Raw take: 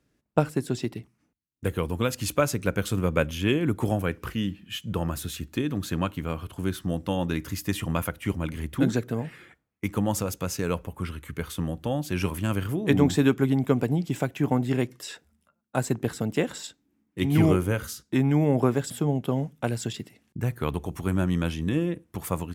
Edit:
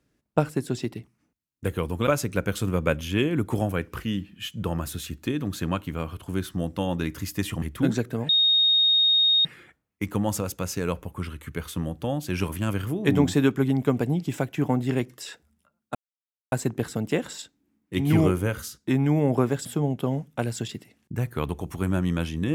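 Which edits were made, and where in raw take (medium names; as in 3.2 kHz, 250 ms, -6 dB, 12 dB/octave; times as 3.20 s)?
2.07–2.37 s: delete
7.92–8.60 s: delete
9.27 s: add tone 3.72 kHz -16.5 dBFS 1.16 s
15.77 s: insert silence 0.57 s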